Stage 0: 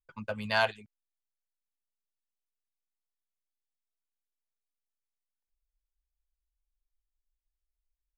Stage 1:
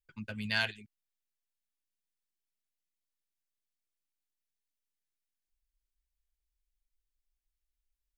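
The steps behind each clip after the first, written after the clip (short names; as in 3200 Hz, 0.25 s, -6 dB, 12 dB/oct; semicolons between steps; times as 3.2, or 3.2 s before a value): band shelf 780 Hz -13.5 dB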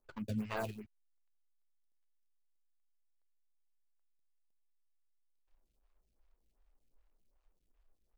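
median filter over 25 samples; compressor 3:1, threshold -50 dBFS, peak gain reduction 11.5 dB; photocell phaser 2.6 Hz; gain +15.5 dB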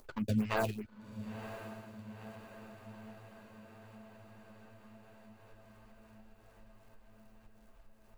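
diffused feedback echo 0.977 s, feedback 62%, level -11 dB; upward compressor, threshold -56 dBFS; gain +6 dB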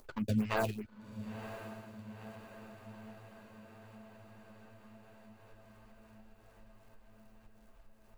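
nothing audible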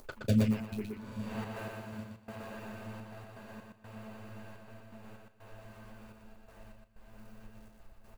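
step gate "x.xx..xxxxxx." 125 bpm -24 dB; doubler 35 ms -14 dB; feedback echo 0.12 s, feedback 22%, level -3 dB; gain +5.5 dB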